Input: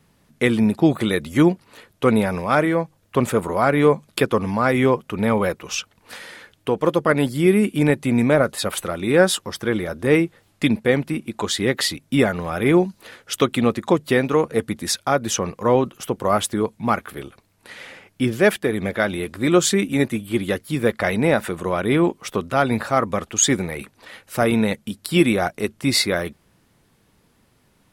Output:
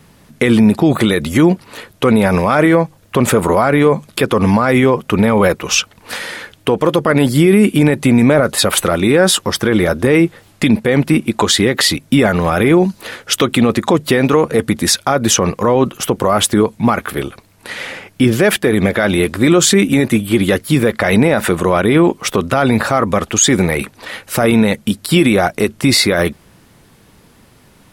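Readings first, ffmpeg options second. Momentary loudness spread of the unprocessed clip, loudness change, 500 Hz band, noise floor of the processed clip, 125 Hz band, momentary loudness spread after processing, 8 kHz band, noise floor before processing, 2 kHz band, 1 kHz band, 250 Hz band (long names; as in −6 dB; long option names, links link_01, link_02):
10 LU, +7.0 dB, +6.0 dB, −48 dBFS, +8.0 dB, 8 LU, +8.5 dB, −61 dBFS, +6.5 dB, +6.0 dB, +7.5 dB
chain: -af "alimiter=level_in=14dB:limit=-1dB:release=50:level=0:latency=1,volume=-1dB"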